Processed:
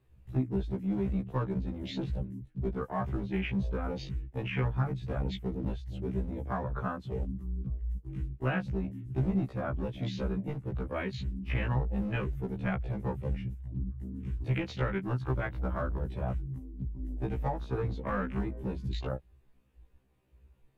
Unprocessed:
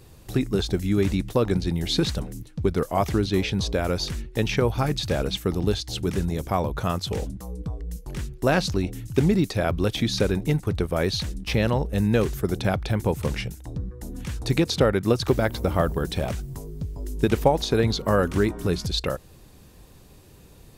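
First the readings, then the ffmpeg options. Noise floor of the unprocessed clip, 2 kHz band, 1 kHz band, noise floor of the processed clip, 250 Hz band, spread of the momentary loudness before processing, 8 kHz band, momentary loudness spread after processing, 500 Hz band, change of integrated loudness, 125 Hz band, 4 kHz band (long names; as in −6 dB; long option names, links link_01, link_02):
−49 dBFS, −9.0 dB, −9.5 dB, −63 dBFS, −9.0 dB, 12 LU, below −25 dB, 6 LU, −13.0 dB, −9.5 dB, −7.0 dB, −19.0 dB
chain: -filter_complex "[0:a]afwtdn=0.0316,acrossover=split=190|950[link_01][link_02][link_03];[link_02]acompressor=threshold=-32dB:ratio=4[link_04];[link_03]acompressor=threshold=-31dB:ratio=4[link_05];[link_01][link_04][link_05]amix=inputs=3:normalize=0,highshelf=frequency=3500:width_type=q:width=1.5:gain=-9.5,acrossover=split=690|1300[link_06][link_07][link_08];[link_06]asoftclip=type=hard:threshold=-21dB[link_09];[link_09][link_07][link_08]amix=inputs=3:normalize=0,afftfilt=real='re*1.73*eq(mod(b,3),0)':imag='im*1.73*eq(mod(b,3),0)':win_size=2048:overlap=0.75,volume=-2dB"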